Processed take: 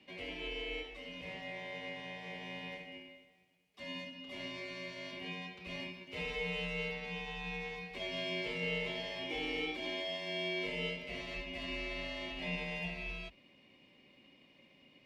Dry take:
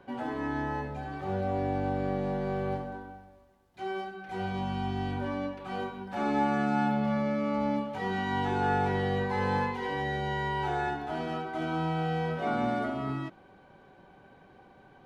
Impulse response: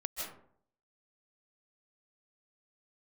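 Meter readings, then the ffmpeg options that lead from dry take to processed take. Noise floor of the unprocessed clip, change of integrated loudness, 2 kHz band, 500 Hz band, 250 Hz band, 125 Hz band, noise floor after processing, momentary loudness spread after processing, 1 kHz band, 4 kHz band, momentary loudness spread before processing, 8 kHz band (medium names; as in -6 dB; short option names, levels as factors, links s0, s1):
-57 dBFS, -8.5 dB, -3.0 dB, -9.5 dB, -14.5 dB, -15.0 dB, -65 dBFS, 8 LU, -19.5 dB, +5.0 dB, 9 LU, no reading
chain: -filter_complex "[0:a]asplit=2[s0][s1];[s1]alimiter=limit=0.0708:level=0:latency=1,volume=1.19[s2];[s0][s2]amix=inputs=2:normalize=0,highpass=f=1200:t=q:w=1.7,aeval=exprs='val(0)*sin(2*PI*1300*n/s)':c=same,afreqshift=30,volume=0.376"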